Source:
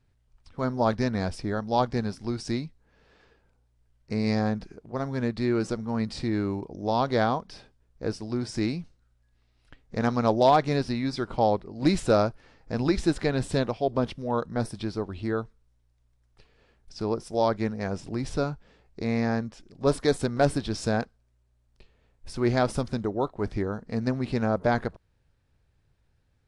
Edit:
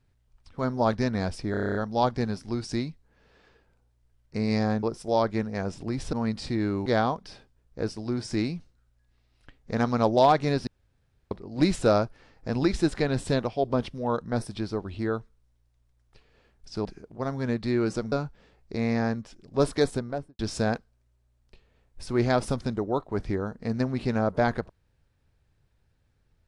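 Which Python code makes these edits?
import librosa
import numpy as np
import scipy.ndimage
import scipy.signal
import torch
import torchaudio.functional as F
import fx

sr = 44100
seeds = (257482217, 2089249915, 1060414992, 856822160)

y = fx.studio_fade_out(x, sr, start_s=20.05, length_s=0.61)
y = fx.edit(y, sr, fx.stutter(start_s=1.51, slice_s=0.03, count=9),
    fx.swap(start_s=4.59, length_s=1.27, other_s=17.09, other_length_s=1.3),
    fx.cut(start_s=6.59, length_s=0.51),
    fx.room_tone_fill(start_s=10.91, length_s=0.64), tone=tone)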